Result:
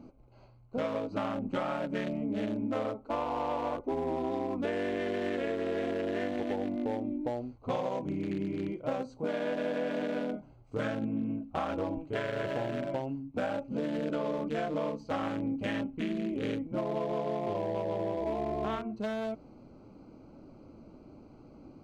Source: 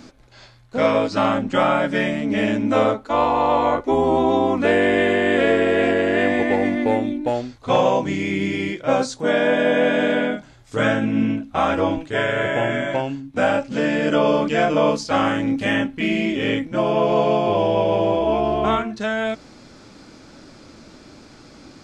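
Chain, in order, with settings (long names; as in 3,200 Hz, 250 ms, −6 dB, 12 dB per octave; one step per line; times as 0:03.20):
adaptive Wiener filter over 25 samples
downward compressor, threshold −23 dBFS, peak gain reduction 10 dB
level −6.5 dB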